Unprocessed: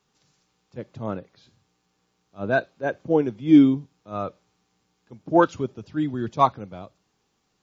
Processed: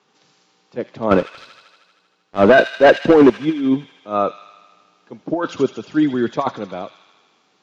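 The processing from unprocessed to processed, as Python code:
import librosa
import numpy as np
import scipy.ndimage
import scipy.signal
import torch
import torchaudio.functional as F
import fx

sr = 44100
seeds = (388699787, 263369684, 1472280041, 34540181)

y = scipy.signal.sosfilt(scipy.signal.butter(2, 260.0, 'highpass', fs=sr, output='sos'), x)
y = fx.over_compress(y, sr, threshold_db=-24.0, ratio=-1.0)
y = fx.leveller(y, sr, passes=3, at=(1.11, 3.3))
y = fx.air_absorb(y, sr, metres=120.0)
y = fx.echo_wet_highpass(y, sr, ms=78, feedback_pct=74, hz=2800.0, wet_db=-4.5)
y = y * librosa.db_to_amplitude(8.0)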